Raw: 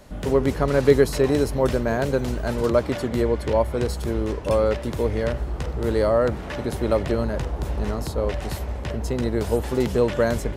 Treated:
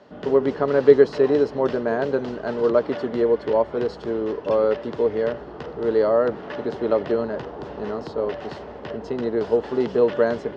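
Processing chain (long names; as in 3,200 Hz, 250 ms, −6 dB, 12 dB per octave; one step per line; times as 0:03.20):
loudspeaker in its box 220–4,300 Hz, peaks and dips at 460 Hz +6 dB, 2,300 Hz −8 dB, 3,800 Hz −5 dB
notch filter 510 Hz, Q 12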